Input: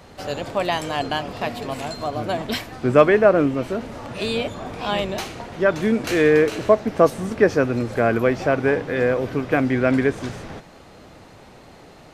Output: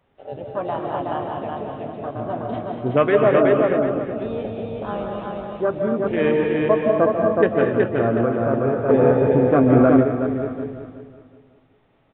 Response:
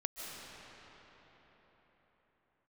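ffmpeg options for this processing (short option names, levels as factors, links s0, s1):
-filter_complex "[0:a]afwtdn=0.0891,aresample=8000,aresample=44100,flanger=delay=7.3:depth=2.1:regen=73:speed=0.33:shape=sinusoidal,aecho=1:1:371|742|1113|1484:0.708|0.205|0.0595|0.0173[s0];[1:a]atrim=start_sample=2205,afade=t=out:st=0.32:d=0.01,atrim=end_sample=14553[s1];[s0][s1]afir=irnorm=-1:irlink=0,asplit=3[s2][s3][s4];[s2]afade=t=out:st=8.88:d=0.02[s5];[s3]acontrast=83,afade=t=in:st=8.88:d=0.02,afade=t=out:st=10.02:d=0.02[s6];[s4]afade=t=in:st=10.02:d=0.02[s7];[s5][s6][s7]amix=inputs=3:normalize=0,volume=1.5"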